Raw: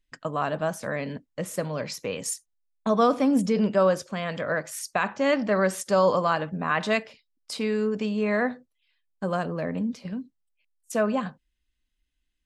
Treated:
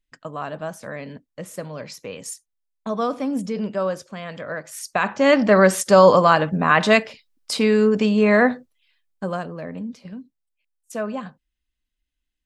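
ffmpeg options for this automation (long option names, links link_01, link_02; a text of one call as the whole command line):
ffmpeg -i in.wav -af "volume=9dB,afade=type=in:start_time=4.64:duration=0.85:silence=0.251189,afade=type=out:start_time=8.5:duration=1:silence=0.251189" out.wav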